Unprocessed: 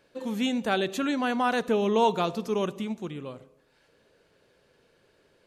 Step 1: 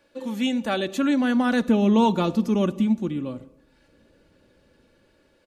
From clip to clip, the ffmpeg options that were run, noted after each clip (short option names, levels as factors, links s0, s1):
-filter_complex "[0:a]aecho=1:1:3.5:0.5,acrossover=split=290|1400[s0][s1][s2];[s0]dynaudnorm=f=530:g=5:m=4.22[s3];[s3][s1][s2]amix=inputs=3:normalize=0"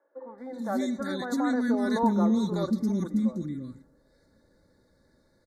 -filter_complex "[0:a]asuperstop=centerf=2800:order=12:qfactor=1.9,acrossover=split=370|1500[s0][s1][s2];[s0]adelay=340[s3];[s2]adelay=380[s4];[s3][s1][s4]amix=inputs=3:normalize=0,volume=0.668"